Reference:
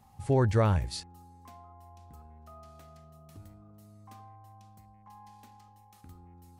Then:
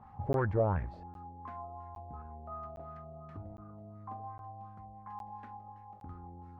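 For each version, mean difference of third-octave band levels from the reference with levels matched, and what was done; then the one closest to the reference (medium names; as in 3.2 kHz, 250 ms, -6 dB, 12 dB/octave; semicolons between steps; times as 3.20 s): 7.5 dB: compression 2:1, threshold -37 dBFS, peak gain reduction 9.5 dB; one-sided clip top -37.5 dBFS; LFO low-pass sine 2.8 Hz 630–1600 Hz; crackling interface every 0.81 s, samples 512, zero, from 0.33 s; trim +3.5 dB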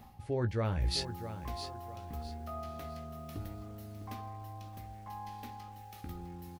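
13.5 dB: ten-band graphic EQ 125 Hz -5 dB, 1 kHz -6 dB, 8 kHz -12 dB; reverse; compression 12:1, threshold -41 dBFS, peak gain reduction 19 dB; reverse; doubling 17 ms -8 dB; bit-crushed delay 656 ms, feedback 35%, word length 11-bit, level -10.5 dB; trim +11 dB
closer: first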